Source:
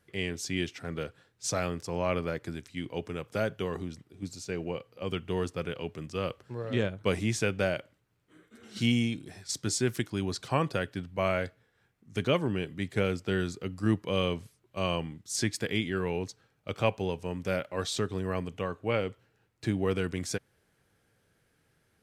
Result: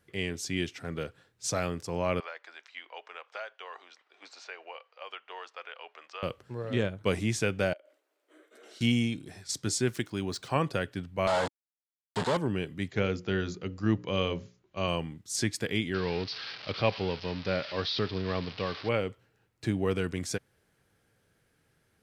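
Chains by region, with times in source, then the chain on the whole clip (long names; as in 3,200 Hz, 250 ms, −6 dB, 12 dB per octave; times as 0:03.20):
0:02.20–0:06.23: high-pass filter 720 Hz 24 dB per octave + high-frequency loss of the air 190 metres + multiband upward and downward compressor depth 70%
0:07.73–0:08.81: Butterworth high-pass 300 Hz 48 dB per octave + parametric band 610 Hz +11.5 dB 0.41 octaves + downward compressor 10 to 1, threshold −48 dBFS
0:09.89–0:10.56: running median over 3 samples + low-shelf EQ 160 Hz −4.5 dB
0:11.27–0:12.37: log-companded quantiser 2 bits + loudspeaker in its box 140–7,600 Hz, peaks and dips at 300 Hz −7 dB, 880 Hz +9 dB, 2,400 Hz −8 dB, 5,900 Hz −10 dB
0:12.90–0:14.88: linear-phase brick-wall low-pass 7,300 Hz + mains-hum notches 60/120/180/240/300/360/420/480/540/600 Hz
0:15.94–0:18.89: spike at every zero crossing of −21.5 dBFS + Butterworth low-pass 5,000 Hz 72 dB per octave
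whole clip: no processing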